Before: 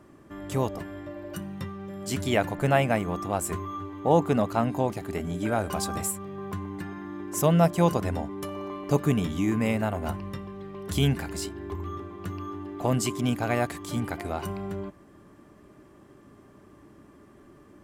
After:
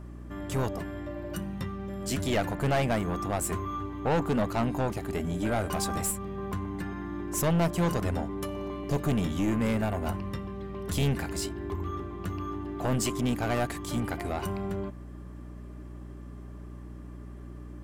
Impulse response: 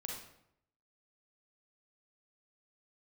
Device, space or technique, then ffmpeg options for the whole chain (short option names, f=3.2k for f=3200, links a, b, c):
valve amplifier with mains hum: -filter_complex "[0:a]aeval=exprs='(tanh(14.1*val(0)+0.25)-tanh(0.25))/14.1':c=same,aeval=exprs='val(0)+0.00708*(sin(2*PI*60*n/s)+sin(2*PI*2*60*n/s)/2+sin(2*PI*3*60*n/s)/3+sin(2*PI*4*60*n/s)/4+sin(2*PI*5*60*n/s)/5)':c=same,asettb=1/sr,asplit=3[a][b][c];[a]atrim=end=8.464[d];[b]atrim=start=8.46:end=9.04,asetpts=PTS-STARTPTS,afade=t=in:d=0.004:c=qsin,afade=t=out:st=0.576:d=0.004:c=qsin,equalizer=f=1.3k:w=1.5:g=-6[e];[c]atrim=start=9.036[f];[d][e]acrossfade=d=0.004:c1=hsin:c2=qsin[g];[g][f]acrossfade=d=0.004:c1=qsin:c2=hsin,volume=1.5dB"